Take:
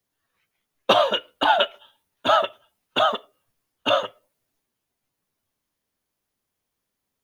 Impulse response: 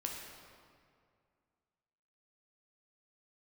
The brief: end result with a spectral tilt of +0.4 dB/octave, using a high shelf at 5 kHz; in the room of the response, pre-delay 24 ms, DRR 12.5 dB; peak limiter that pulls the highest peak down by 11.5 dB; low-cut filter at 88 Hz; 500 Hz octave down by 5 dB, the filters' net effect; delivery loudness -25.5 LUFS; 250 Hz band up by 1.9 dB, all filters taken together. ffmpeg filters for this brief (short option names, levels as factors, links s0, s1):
-filter_complex "[0:a]highpass=88,equalizer=f=250:t=o:g=4.5,equalizer=f=500:t=o:g=-7.5,highshelf=f=5000:g=3,alimiter=limit=0.178:level=0:latency=1,asplit=2[s0][s1];[1:a]atrim=start_sample=2205,adelay=24[s2];[s1][s2]afir=irnorm=-1:irlink=0,volume=0.224[s3];[s0][s3]amix=inputs=2:normalize=0,volume=1.26"